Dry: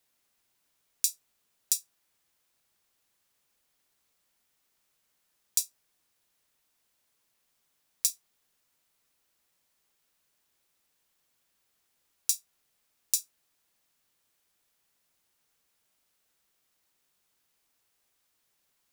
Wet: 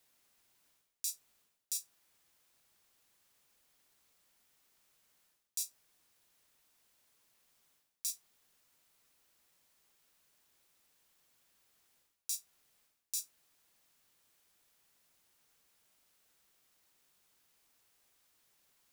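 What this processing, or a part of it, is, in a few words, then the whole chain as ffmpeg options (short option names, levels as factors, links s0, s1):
compression on the reversed sound: -af "areverse,acompressor=threshold=0.0141:ratio=16,areverse,volume=1.33"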